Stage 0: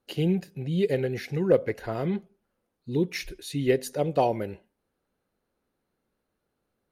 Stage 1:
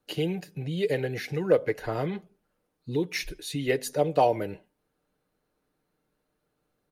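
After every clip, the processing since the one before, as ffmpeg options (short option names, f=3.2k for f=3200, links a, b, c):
-filter_complex "[0:a]aecho=1:1:6.6:0.41,acrossover=split=370|1100[a][b][c];[a]acompressor=threshold=-33dB:ratio=6[d];[d][b][c]amix=inputs=3:normalize=0,volume=1.5dB"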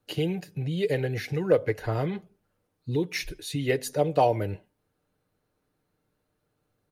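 -af "equalizer=f=100:t=o:w=0.59:g=11"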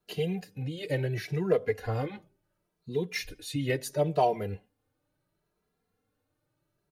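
-filter_complex "[0:a]asplit=2[a][b];[b]adelay=2.6,afreqshift=0.72[c];[a][c]amix=inputs=2:normalize=1"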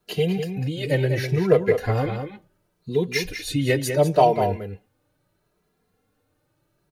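-filter_complex "[0:a]asplit=2[a][b];[b]adelay=198.3,volume=-7dB,highshelf=f=4k:g=-4.46[c];[a][c]amix=inputs=2:normalize=0,volume=8dB"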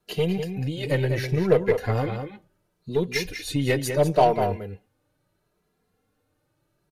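-af "aeval=exprs='0.631*(cos(1*acos(clip(val(0)/0.631,-1,1)))-cos(1*PI/2))+0.0224*(cos(8*acos(clip(val(0)/0.631,-1,1)))-cos(8*PI/2))':c=same,aresample=32000,aresample=44100,volume=-2dB"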